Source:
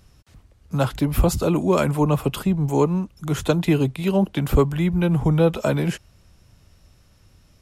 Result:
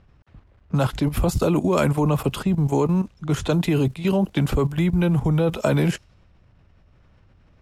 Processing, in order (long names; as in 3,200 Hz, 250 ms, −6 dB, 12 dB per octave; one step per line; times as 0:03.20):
bit-depth reduction 10 bits, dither none
low-pass that shuts in the quiet parts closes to 2,000 Hz, open at −17.5 dBFS
output level in coarse steps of 12 dB
level +5.5 dB